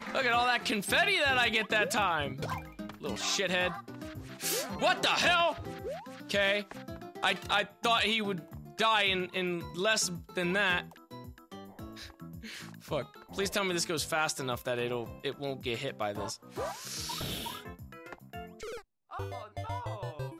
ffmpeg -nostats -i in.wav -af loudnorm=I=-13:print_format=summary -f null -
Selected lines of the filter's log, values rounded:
Input Integrated:    -30.9 LUFS
Input True Peak:     -15.0 dBTP
Input LRA:            12.2 LU
Input Threshold:     -42.2 LUFS